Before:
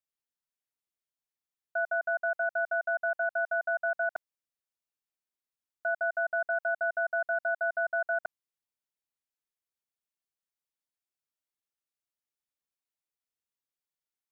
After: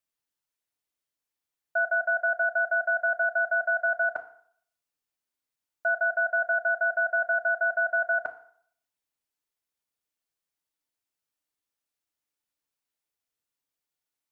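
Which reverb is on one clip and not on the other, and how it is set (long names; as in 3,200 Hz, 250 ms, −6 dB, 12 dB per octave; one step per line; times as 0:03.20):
feedback delay network reverb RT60 0.6 s, low-frequency decay 0.8×, high-frequency decay 0.8×, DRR 6.5 dB
level +3.5 dB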